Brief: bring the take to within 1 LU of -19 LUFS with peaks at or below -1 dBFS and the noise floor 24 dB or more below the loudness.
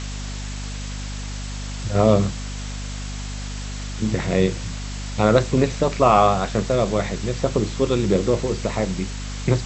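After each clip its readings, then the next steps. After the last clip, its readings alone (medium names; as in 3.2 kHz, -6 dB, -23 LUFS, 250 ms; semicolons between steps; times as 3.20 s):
hum 50 Hz; highest harmonic 250 Hz; hum level -28 dBFS; noise floor -30 dBFS; noise floor target -47 dBFS; loudness -22.5 LUFS; peak level -2.5 dBFS; loudness target -19.0 LUFS
-> hum notches 50/100/150/200/250 Hz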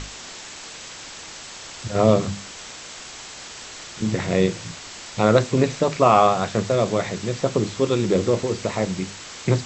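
hum not found; noise floor -39 dBFS; noise floor target -46 dBFS
-> noise reduction 7 dB, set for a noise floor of -39 dBFS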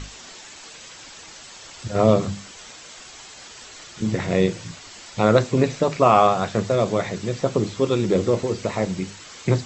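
noise floor -43 dBFS; noise floor target -46 dBFS
-> noise reduction 6 dB, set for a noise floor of -43 dBFS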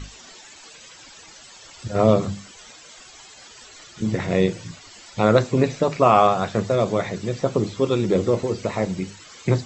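noise floor -46 dBFS; loudness -21.5 LUFS; peak level -2.5 dBFS; loudness target -19.0 LUFS
-> trim +2.5 dB; peak limiter -1 dBFS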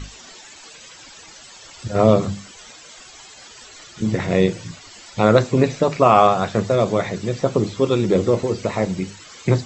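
loudness -19.0 LUFS; peak level -1.0 dBFS; noise floor -43 dBFS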